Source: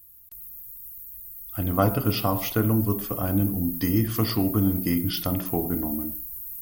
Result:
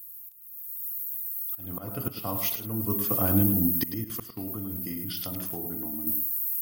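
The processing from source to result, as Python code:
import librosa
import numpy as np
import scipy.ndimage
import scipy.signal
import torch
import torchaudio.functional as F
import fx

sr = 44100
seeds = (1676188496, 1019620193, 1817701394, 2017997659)

y = scipy.signal.sosfilt(scipy.signal.butter(4, 82.0, 'highpass', fs=sr, output='sos'), x)
y = fx.high_shelf(y, sr, hz=5600.0, db=7.5)
y = fx.auto_swell(y, sr, attack_ms=572.0)
y = fx.level_steps(y, sr, step_db=17, at=(4.04, 6.07))
y = y + 10.0 ** (-10.0 / 20.0) * np.pad(y, (int(106 * sr / 1000.0), 0))[:len(y)]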